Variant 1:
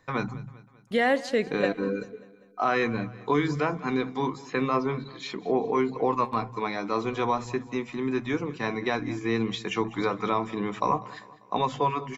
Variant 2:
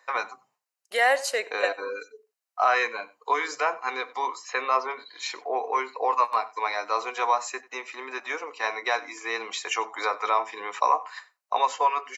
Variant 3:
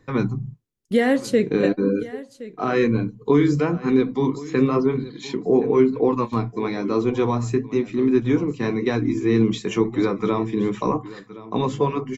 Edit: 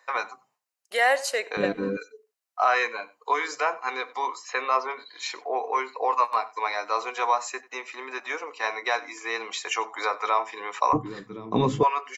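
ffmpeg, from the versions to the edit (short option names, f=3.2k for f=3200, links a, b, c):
-filter_complex "[1:a]asplit=3[a][b][c];[a]atrim=end=1.572[d];[0:a]atrim=start=1.568:end=1.972[e];[b]atrim=start=1.968:end=10.932[f];[2:a]atrim=start=10.928:end=11.832[g];[c]atrim=start=11.828[h];[d][e]acrossfade=d=0.004:c1=hsin:c2=hsin[i];[i][f]acrossfade=d=0.004:c1=hsin:c2=hsin[j];[j][g]acrossfade=d=0.004:c1=hsin:c2=hsin[k];[k][h]acrossfade=d=0.004:c1=hsin:c2=hsin"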